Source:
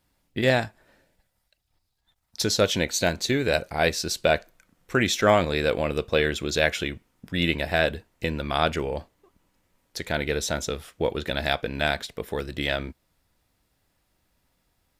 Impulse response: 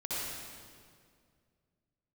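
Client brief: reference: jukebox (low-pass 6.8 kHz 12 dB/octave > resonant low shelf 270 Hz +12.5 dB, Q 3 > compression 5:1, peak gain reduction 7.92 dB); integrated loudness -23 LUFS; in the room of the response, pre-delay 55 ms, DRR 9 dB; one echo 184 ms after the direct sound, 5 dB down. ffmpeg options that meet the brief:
-filter_complex "[0:a]aecho=1:1:184:0.562,asplit=2[s0][s1];[1:a]atrim=start_sample=2205,adelay=55[s2];[s1][s2]afir=irnorm=-1:irlink=0,volume=0.2[s3];[s0][s3]amix=inputs=2:normalize=0,lowpass=6800,lowshelf=f=270:t=q:w=3:g=12.5,acompressor=threshold=0.2:ratio=5,volume=0.708"

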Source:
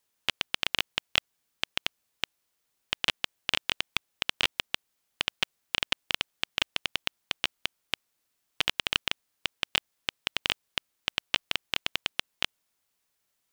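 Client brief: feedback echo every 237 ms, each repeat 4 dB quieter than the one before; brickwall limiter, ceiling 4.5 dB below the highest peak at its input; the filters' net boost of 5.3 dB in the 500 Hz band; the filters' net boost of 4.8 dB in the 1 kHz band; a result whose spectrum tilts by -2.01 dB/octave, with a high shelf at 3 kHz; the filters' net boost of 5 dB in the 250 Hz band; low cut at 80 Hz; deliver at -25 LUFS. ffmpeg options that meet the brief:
-af "highpass=80,equalizer=f=250:t=o:g=5,equalizer=f=500:t=o:g=4,equalizer=f=1000:t=o:g=4,highshelf=f=3000:g=6.5,alimiter=limit=0.562:level=0:latency=1,aecho=1:1:237|474|711|948|1185|1422|1659|1896|2133:0.631|0.398|0.25|0.158|0.0994|0.0626|0.0394|0.0249|0.0157,volume=1.68"

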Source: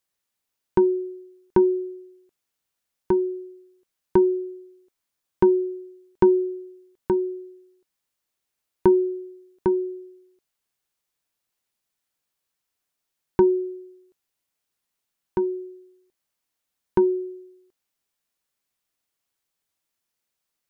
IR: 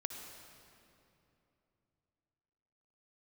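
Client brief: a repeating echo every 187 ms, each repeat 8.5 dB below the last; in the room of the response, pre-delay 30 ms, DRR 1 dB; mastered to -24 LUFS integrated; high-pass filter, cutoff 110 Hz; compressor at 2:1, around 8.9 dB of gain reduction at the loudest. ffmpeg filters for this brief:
-filter_complex "[0:a]highpass=110,acompressor=threshold=0.0355:ratio=2,aecho=1:1:187|374|561|748:0.376|0.143|0.0543|0.0206,asplit=2[s0][s1];[1:a]atrim=start_sample=2205,adelay=30[s2];[s1][s2]afir=irnorm=-1:irlink=0,volume=0.944[s3];[s0][s3]amix=inputs=2:normalize=0,volume=1.26"

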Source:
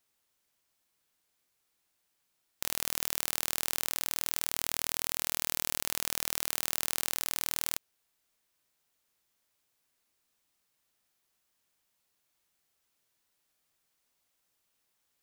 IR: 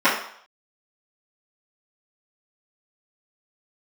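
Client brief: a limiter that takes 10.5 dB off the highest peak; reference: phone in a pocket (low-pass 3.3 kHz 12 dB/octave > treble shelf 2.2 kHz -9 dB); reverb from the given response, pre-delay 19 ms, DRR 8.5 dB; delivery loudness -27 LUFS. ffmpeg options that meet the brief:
-filter_complex "[0:a]alimiter=limit=0.188:level=0:latency=1,asplit=2[s0][s1];[1:a]atrim=start_sample=2205,adelay=19[s2];[s1][s2]afir=irnorm=-1:irlink=0,volume=0.0299[s3];[s0][s3]amix=inputs=2:normalize=0,lowpass=3300,highshelf=f=2200:g=-9,volume=25.1"

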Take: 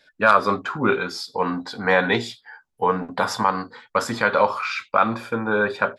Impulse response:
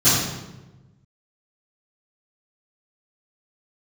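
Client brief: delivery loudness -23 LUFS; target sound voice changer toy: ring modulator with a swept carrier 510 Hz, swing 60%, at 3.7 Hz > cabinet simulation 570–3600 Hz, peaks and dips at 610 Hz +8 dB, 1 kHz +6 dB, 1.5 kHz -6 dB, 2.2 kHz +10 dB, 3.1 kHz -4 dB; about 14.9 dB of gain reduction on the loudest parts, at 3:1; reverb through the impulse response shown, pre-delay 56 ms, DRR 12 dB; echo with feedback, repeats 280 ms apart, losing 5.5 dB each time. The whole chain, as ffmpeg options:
-filter_complex "[0:a]acompressor=threshold=0.0251:ratio=3,aecho=1:1:280|560|840|1120|1400|1680|1960:0.531|0.281|0.149|0.079|0.0419|0.0222|0.0118,asplit=2[s0][s1];[1:a]atrim=start_sample=2205,adelay=56[s2];[s1][s2]afir=irnorm=-1:irlink=0,volume=0.0251[s3];[s0][s3]amix=inputs=2:normalize=0,aeval=exprs='val(0)*sin(2*PI*510*n/s+510*0.6/3.7*sin(2*PI*3.7*n/s))':c=same,highpass=570,equalizer=f=610:t=q:w=4:g=8,equalizer=f=1000:t=q:w=4:g=6,equalizer=f=1500:t=q:w=4:g=-6,equalizer=f=2200:t=q:w=4:g=10,equalizer=f=3100:t=q:w=4:g=-4,lowpass=f=3600:w=0.5412,lowpass=f=3600:w=1.3066,volume=2.99"

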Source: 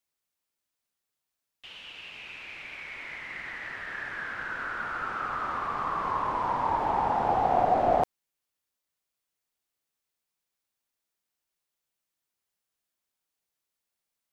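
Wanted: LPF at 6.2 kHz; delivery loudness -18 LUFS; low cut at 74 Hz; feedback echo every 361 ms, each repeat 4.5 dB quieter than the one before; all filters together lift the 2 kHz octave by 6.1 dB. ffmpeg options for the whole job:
-af "highpass=74,lowpass=6200,equalizer=f=2000:t=o:g=8,aecho=1:1:361|722|1083|1444|1805|2166|2527|2888|3249:0.596|0.357|0.214|0.129|0.0772|0.0463|0.0278|0.0167|0.01,volume=2.66"

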